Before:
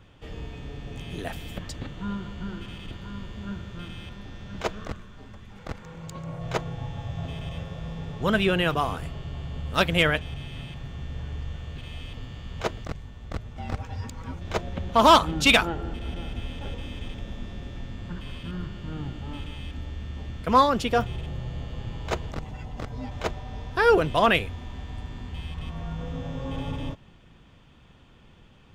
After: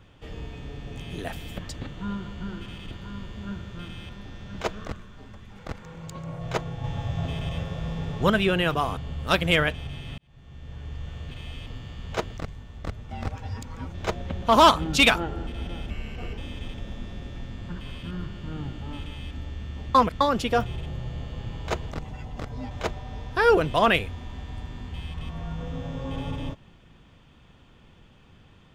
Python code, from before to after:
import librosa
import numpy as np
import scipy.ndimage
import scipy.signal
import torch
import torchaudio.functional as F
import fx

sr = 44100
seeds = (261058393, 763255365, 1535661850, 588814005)

y = fx.edit(x, sr, fx.clip_gain(start_s=6.84, length_s=1.46, db=4.0),
    fx.cut(start_s=8.97, length_s=0.47),
    fx.fade_in_span(start_s=10.65, length_s=0.99),
    fx.speed_span(start_s=16.37, length_s=0.41, speed=0.86),
    fx.reverse_span(start_s=20.35, length_s=0.26), tone=tone)